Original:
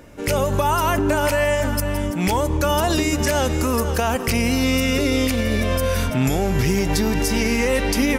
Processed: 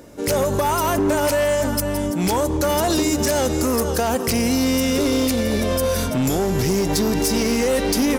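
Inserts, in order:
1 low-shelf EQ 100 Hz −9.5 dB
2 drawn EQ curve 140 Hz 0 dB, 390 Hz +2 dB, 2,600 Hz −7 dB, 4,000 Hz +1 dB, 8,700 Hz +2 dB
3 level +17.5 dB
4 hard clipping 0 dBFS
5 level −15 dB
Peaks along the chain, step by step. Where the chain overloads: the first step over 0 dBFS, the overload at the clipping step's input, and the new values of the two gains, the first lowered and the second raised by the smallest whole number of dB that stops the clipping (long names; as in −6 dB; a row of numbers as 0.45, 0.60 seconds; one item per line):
−9.5, −8.5, +9.0, 0.0, −15.0 dBFS
step 3, 9.0 dB
step 3 +8.5 dB, step 5 −6 dB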